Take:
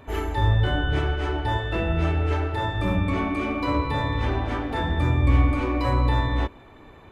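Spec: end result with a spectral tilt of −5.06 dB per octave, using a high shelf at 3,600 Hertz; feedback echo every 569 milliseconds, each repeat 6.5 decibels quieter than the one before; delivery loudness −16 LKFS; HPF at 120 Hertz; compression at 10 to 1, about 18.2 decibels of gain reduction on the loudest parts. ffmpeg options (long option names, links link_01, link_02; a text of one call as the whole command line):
ffmpeg -i in.wav -af "highpass=120,highshelf=frequency=3600:gain=-5.5,acompressor=threshold=-40dB:ratio=10,aecho=1:1:569|1138|1707|2276|2845|3414:0.473|0.222|0.105|0.0491|0.0231|0.0109,volume=26.5dB" out.wav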